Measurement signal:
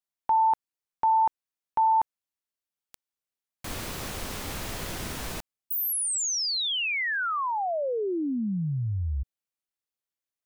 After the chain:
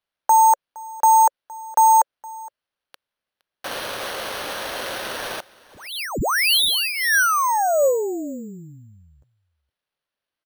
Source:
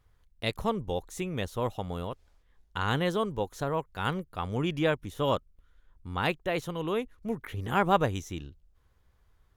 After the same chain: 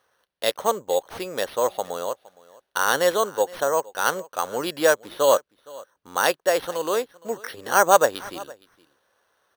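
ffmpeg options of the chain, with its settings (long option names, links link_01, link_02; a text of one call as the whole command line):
ffmpeg -i in.wav -af "highpass=500,equalizer=frequency=550:width_type=q:width=4:gain=7,equalizer=frequency=1600:width_type=q:width=4:gain=5,equalizer=frequency=2300:width_type=q:width=4:gain=-9,equalizer=frequency=4300:width_type=q:width=4:gain=4,equalizer=frequency=8600:width_type=q:width=4:gain=-10,lowpass=frequency=9200:width=0.5412,lowpass=frequency=9200:width=1.3066,acrusher=samples=6:mix=1:aa=0.000001,aecho=1:1:465:0.0794,acontrast=24,volume=3.5dB" out.wav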